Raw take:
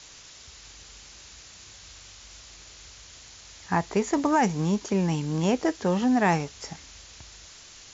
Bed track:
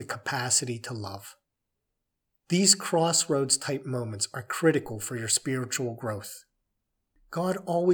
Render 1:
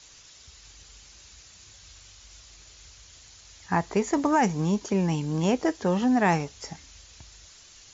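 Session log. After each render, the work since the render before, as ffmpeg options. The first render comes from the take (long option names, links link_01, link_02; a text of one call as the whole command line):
ffmpeg -i in.wav -af "afftdn=noise_reduction=6:noise_floor=-48" out.wav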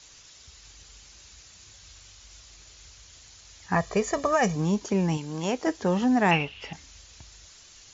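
ffmpeg -i in.wav -filter_complex "[0:a]asettb=1/sr,asplit=3[link_01][link_02][link_03];[link_01]atrim=end=3.754[link_04];[link_02]atrim=start=3.75:end=4.56,asetpts=PTS-STARTPTS,afade=type=in:duration=0.004:curve=qsin,afade=type=out:start_time=0.806:duration=0.004:curve=qsin,aecho=1:1:1.7:0.73,atrim=end_sample=35721[link_05];[link_03]atrim=start=4.556[link_06];[link_04][link_05]acrossfade=duration=0.004:curve1=hsin:curve2=qsin[link_07];[link_07][link_06]acrossfade=duration=0.004:curve1=qsin:curve2=hsin,asettb=1/sr,asplit=3[link_08][link_09][link_10];[link_08]atrim=end=5.174[link_11];[link_09]atrim=start=5.17:end=5.67,asetpts=PTS-STARTPTS,afade=type=in:duration=0.004:curve=qsin,afade=type=out:start_time=0.496:duration=0.004:curve=qsin,lowshelf=frequency=340:gain=-9[link_12];[link_10]atrim=start=5.666[link_13];[link_11][link_12]acrossfade=duration=0.004:curve1=hsin:curve2=qsin[link_14];[link_14][link_13]acrossfade=duration=0.004:curve1=qsin:curve2=hsin,asettb=1/sr,asplit=3[link_15][link_16][link_17];[link_15]atrim=end=6.314[link_18];[link_16]atrim=start=6.31:end=6.73,asetpts=PTS-STARTPTS,afade=type=in:duration=0.004:curve=qsin,afade=type=out:start_time=0.416:duration=0.004:curve=qsin,lowpass=frequency=2800:width_type=q:width=9.6[link_19];[link_17]atrim=start=6.726[link_20];[link_18][link_19]acrossfade=duration=0.004:curve1=hsin:curve2=qsin[link_21];[link_21][link_20]acrossfade=duration=0.004:curve1=qsin:curve2=hsin" out.wav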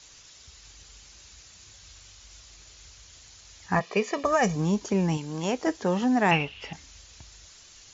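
ffmpeg -i in.wav -filter_complex "[0:a]asplit=3[link_01][link_02][link_03];[link_01]afade=type=out:start_time=3.79:duration=0.02[link_04];[link_02]highpass=frequency=190:width=0.5412,highpass=frequency=190:width=1.3066,equalizer=frequency=660:width_type=q:width=4:gain=-5,equalizer=frequency=1500:width_type=q:width=4:gain=-5,equalizer=frequency=2600:width_type=q:width=4:gain=9,lowpass=frequency=5700:width=0.5412,lowpass=frequency=5700:width=1.3066,afade=type=in:start_time=3.79:duration=0.02,afade=type=out:start_time=4.23:duration=0.02[link_05];[link_03]afade=type=in:start_time=4.23:duration=0.02[link_06];[link_04][link_05][link_06]amix=inputs=3:normalize=0,asettb=1/sr,asplit=3[link_07][link_08][link_09];[link_07]atrim=end=5.774[link_10];[link_08]atrim=start=5.77:end=6.32,asetpts=PTS-STARTPTS,afade=type=in:duration=0.004:curve=qsin,afade=type=out:start_time=0.546:duration=0.004:curve=qsin,highpass=frequency=140:poles=1[link_11];[link_09]atrim=start=6.316[link_12];[link_10][link_11]acrossfade=duration=0.004:curve1=hsin:curve2=qsin[link_13];[link_13][link_12]acrossfade=duration=0.004:curve1=qsin:curve2=hsin" out.wav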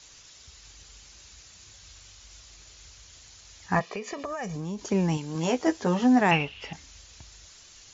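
ffmpeg -i in.wav -filter_complex "[0:a]asettb=1/sr,asplit=3[link_01][link_02][link_03];[link_01]atrim=end=3.894[link_04];[link_02]atrim=start=3.89:end=4.79,asetpts=PTS-STARTPTS,afade=type=in:duration=0.004:curve=qsin,afade=type=out:start_time=0.896:duration=0.004:curve=qsin,acompressor=threshold=-31dB:ratio=5:attack=3.2:release=140:knee=1:detection=peak[link_05];[link_03]atrim=start=4.786[link_06];[link_04][link_05]acrossfade=duration=0.004:curve1=hsin:curve2=qsin[link_07];[link_07][link_06]acrossfade=duration=0.004:curve1=qsin:curve2=hsin,asettb=1/sr,asplit=3[link_08][link_09][link_10];[link_08]atrim=end=5.344[link_11];[link_09]atrim=start=5.34:end=6.21,asetpts=PTS-STARTPTS,afade=type=in:duration=0.004:curve=qsin,afade=type=out:start_time=0.866:duration=0.004:curve=qsin,asplit=2[link_12][link_13];[link_13]adelay=12,volume=-4.5dB[link_14];[link_12][link_14]amix=inputs=2:normalize=0,atrim=end_sample=38367[link_15];[link_10]atrim=start=6.206[link_16];[link_11][link_15]acrossfade=duration=0.004:curve1=hsin:curve2=qsin[link_17];[link_17][link_16]acrossfade=duration=0.004:curve1=qsin:curve2=hsin" out.wav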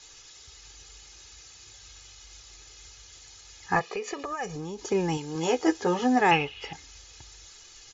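ffmpeg -i in.wav -af "equalizer=frequency=72:width_type=o:width=1.3:gain=-6,aecho=1:1:2.4:0.59" out.wav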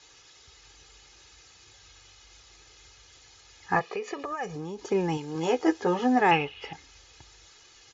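ffmpeg -i in.wav -af "highpass=frequency=94:poles=1,aemphasis=mode=reproduction:type=50fm" out.wav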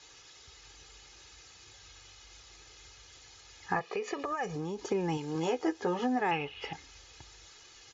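ffmpeg -i in.wav -af "acompressor=threshold=-29dB:ratio=3" out.wav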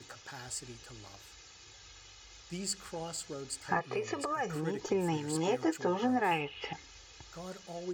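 ffmpeg -i in.wav -i bed.wav -filter_complex "[1:a]volume=-16.5dB[link_01];[0:a][link_01]amix=inputs=2:normalize=0" out.wav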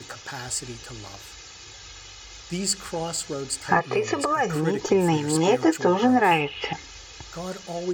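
ffmpeg -i in.wav -af "volume=11dB" out.wav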